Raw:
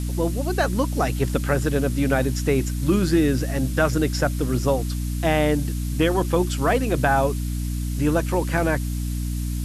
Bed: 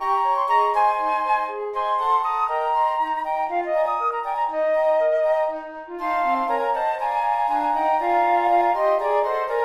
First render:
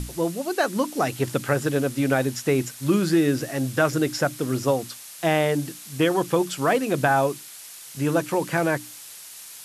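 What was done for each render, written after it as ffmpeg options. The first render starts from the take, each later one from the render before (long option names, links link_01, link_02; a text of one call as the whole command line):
ffmpeg -i in.wav -af "bandreject=frequency=60:width_type=h:width=6,bandreject=frequency=120:width_type=h:width=6,bandreject=frequency=180:width_type=h:width=6,bandreject=frequency=240:width_type=h:width=6,bandreject=frequency=300:width_type=h:width=6" out.wav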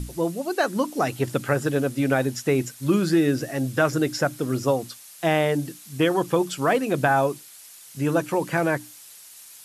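ffmpeg -i in.wav -af "afftdn=noise_reduction=6:noise_floor=-42" out.wav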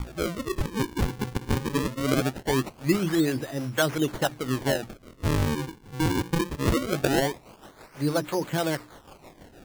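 ffmpeg -i in.wav -filter_complex "[0:a]acrossover=split=470[link_01][link_02];[link_01]aeval=exprs='val(0)*(1-0.7/2+0.7/2*cos(2*PI*6.2*n/s))':channel_layout=same[link_03];[link_02]aeval=exprs='val(0)*(1-0.7/2-0.7/2*cos(2*PI*6.2*n/s))':channel_layout=same[link_04];[link_03][link_04]amix=inputs=2:normalize=0,acrusher=samples=39:mix=1:aa=0.000001:lfo=1:lforange=62.4:lforate=0.21" out.wav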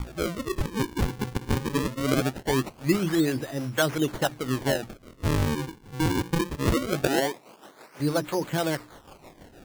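ffmpeg -i in.wav -filter_complex "[0:a]asettb=1/sr,asplit=3[link_01][link_02][link_03];[link_01]atrim=end=7.074[link_04];[link_02]atrim=start=7.07:end=8,asetpts=PTS-STARTPTS,afade=type=in:duration=0.004:curve=qsin,afade=type=out:start_time=0.926:duration=0.004:curve=qsin,highpass=230[link_05];[link_03]atrim=start=7.996[link_06];[link_04][link_05]acrossfade=duration=0.004:curve1=hsin:curve2=qsin[link_07];[link_07][link_06]acrossfade=duration=0.004:curve1=qsin:curve2=hsin" out.wav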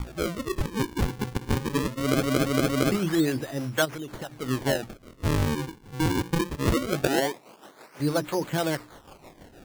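ffmpeg -i in.wav -filter_complex "[0:a]asplit=3[link_01][link_02][link_03];[link_01]afade=type=out:start_time=3.84:duration=0.02[link_04];[link_02]acompressor=threshold=-33dB:ratio=5:attack=3.2:release=140:knee=1:detection=peak,afade=type=in:start_time=3.84:duration=0.02,afade=type=out:start_time=4.41:duration=0.02[link_05];[link_03]afade=type=in:start_time=4.41:duration=0.02[link_06];[link_04][link_05][link_06]amix=inputs=3:normalize=0,asplit=5[link_07][link_08][link_09][link_10][link_11];[link_07]atrim=end=2.232[link_12];[link_08]atrim=start=1.998:end=2.232[link_13];[link_09]atrim=start=1.998:end=2.232[link_14];[link_10]atrim=start=1.998:end=2.232[link_15];[link_11]atrim=start=2.918[link_16];[link_12][link_13]acrossfade=duration=0.004:curve1=hsin:curve2=hsin[link_17];[link_17][link_14]acrossfade=duration=0.004:curve1=hsin:curve2=hsin[link_18];[link_18][link_15]acrossfade=duration=0.004:curve1=hsin:curve2=hsin[link_19];[link_19][link_16]acrossfade=duration=0.004:curve1=hsin:curve2=hsin" out.wav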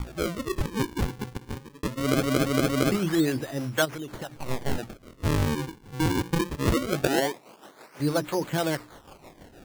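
ffmpeg -i in.wav -filter_complex "[0:a]asettb=1/sr,asplit=3[link_01][link_02][link_03];[link_01]atrim=end=4.364[link_04];[link_02]atrim=start=4.36:end=4.78,asetpts=PTS-STARTPTS,afade=type=in:duration=0.004:curve=qsin,afade=type=out:start_time=0.416:duration=0.004:curve=qsin,aeval=exprs='abs(val(0))':channel_layout=same[link_05];[link_03]atrim=start=4.776[link_06];[link_04][link_05]acrossfade=duration=0.004:curve1=hsin:curve2=qsin[link_07];[link_07][link_06]acrossfade=duration=0.004:curve1=qsin:curve2=hsin,asplit=2[link_08][link_09];[link_08]atrim=end=1.83,asetpts=PTS-STARTPTS,afade=type=out:start_time=0.88:duration=0.95[link_10];[link_09]atrim=start=1.83,asetpts=PTS-STARTPTS,afade=type=in:duration=0.004:curve=hsin[link_11];[link_10][link_11]concat=n=2:v=0:a=1" out.wav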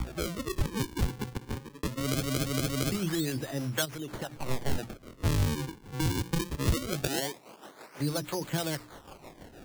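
ffmpeg -i in.wav -filter_complex "[0:a]acrossover=split=150|3000[link_01][link_02][link_03];[link_02]acompressor=threshold=-32dB:ratio=4[link_04];[link_01][link_04][link_03]amix=inputs=3:normalize=0" out.wav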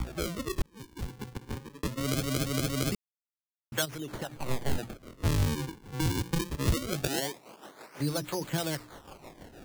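ffmpeg -i in.wav -filter_complex "[0:a]asettb=1/sr,asplit=3[link_01][link_02][link_03];[link_01]atrim=end=4.244[link_04];[link_02]atrim=start=4.24:end=4.94,asetpts=PTS-STARTPTS,afade=type=in:duration=0.004:curve=qsin,afade=type=out:start_time=0.696:duration=0.004:curve=qsin,bandreject=frequency=5500:width=12[link_05];[link_03]atrim=start=4.936[link_06];[link_04][link_05]acrossfade=duration=0.004:curve1=hsin:curve2=qsin[link_07];[link_07][link_06]acrossfade=duration=0.004:curve1=qsin:curve2=hsin,asplit=4[link_08][link_09][link_10][link_11];[link_08]atrim=end=0.62,asetpts=PTS-STARTPTS,afade=type=out:start_time=0.616:duration=0.004:curve=hsin[link_12];[link_09]atrim=start=0.62:end=2.95,asetpts=PTS-STARTPTS,afade=type=in:duration=1.08,afade=type=out:start_time=2.326:duration=0.004:curve=hsin[link_13];[link_10]atrim=start=2.95:end=3.72,asetpts=PTS-STARTPTS,volume=0[link_14];[link_11]atrim=start=3.72,asetpts=PTS-STARTPTS,afade=type=in:duration=0.004:curve=hsin[link_15];[link_12][link_13][link_14][link_15]concat=n=4:v=0:a=1" out.wav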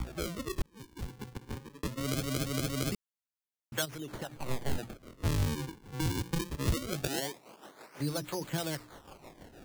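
ffmpeg -i in.wav -af "volume=-3dB" out.wav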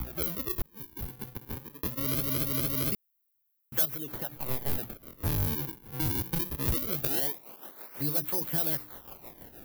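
ffmpeg -i in.wav -af "aexciter=amount=10.3:drive=4.8:freq=11000,asoftclip=type=tanh:threshold=-17.5dB" out.wav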